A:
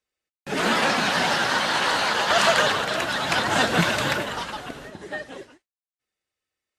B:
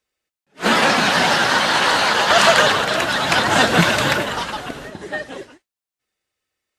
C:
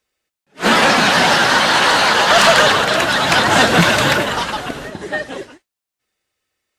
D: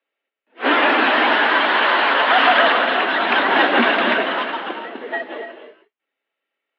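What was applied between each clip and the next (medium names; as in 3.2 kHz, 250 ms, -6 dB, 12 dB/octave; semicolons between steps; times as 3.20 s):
attacks held to a fixed rise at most 350 dB/s; trim +6 dB
saturation -8 dBFS, distortion -18 dB; trim +4.5 dB
mistuned SSB +66 Hz 170–3200 Hz; gated-style reverb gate 320 ms rising, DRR 8 dB; trim -3 dB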